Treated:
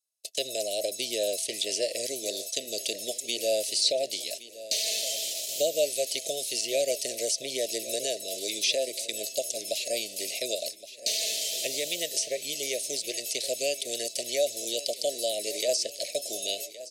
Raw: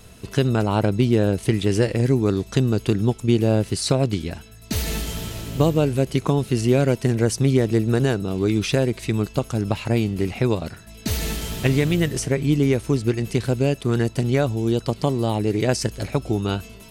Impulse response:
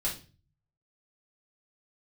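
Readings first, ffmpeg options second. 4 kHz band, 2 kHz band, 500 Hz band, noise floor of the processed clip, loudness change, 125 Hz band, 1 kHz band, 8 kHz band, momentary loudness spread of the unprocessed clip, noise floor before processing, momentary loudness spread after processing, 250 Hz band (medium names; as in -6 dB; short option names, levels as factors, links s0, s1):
+4.0 dB, -7.0 dB, -7.0 dB, -45 dBFS, -7.5 dB, -39.5 dB, -12.5 dB, +5.0 dB, 8 LU, -43 dBFS, 6 LU, -24.0 dB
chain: -filter_complex "[0:a]acrossover=split=9200[s0][s1];[s1]acompressor=threshold=0.00282:ratio=4:attack=1:release=60[s2];[s0][s2]amix=inputs=2:normalize=0,agate=range=0.00398:threshold=0.0282:ratio=16:detection=peak,equalizer=f=2900:w=1.5:g=-7,acrossover=split=780|3500[s3][s4][s5];[s3]flanger=delay=1.6:depth=2.7:regen=-87:speed=0.16:shape=triangular[s6];[s4]alimiter=limit=0.0631:level=0:latency=1:release=333[s7];[s5]acompressor=threshold=0.00398:ratio=6[s8];[s6][s7][s8]amix=inputs=3:normalize=0,highpass=f=610:t=q:w=4.9,aexciter=amount=13.1:drive=5.2:freq=2700,asuperstop=centerf=1100:order=12:qfactor=1,asplit=2[s9][s10];[s10]aecho=0:1:1118|2236|3354|4472:0.158|0.0666|0.028|0.0117[s11];[s9][s11]amix=inputs=2:normalize=0,volume=0.376"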